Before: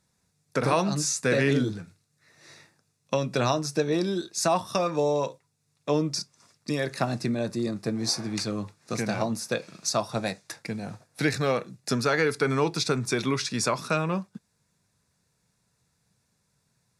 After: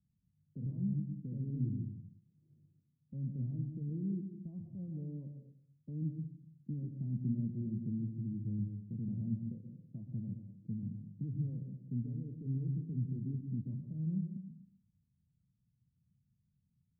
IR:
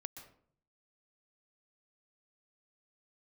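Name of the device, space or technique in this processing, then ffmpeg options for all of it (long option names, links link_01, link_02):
club heard from the street: -filter_complex "[0:a]alimiter=limit=-20dB:level=0:latency=1:release=48,lowpass=frequency=210:width=0.5412,lowpass=frequency=210:width=1.3066[link_01];[1:a]atrim=start_sample=2205[link_02];[link_01][link_02]afir=irnorm=-1:irlink=0,volume=1.5dB"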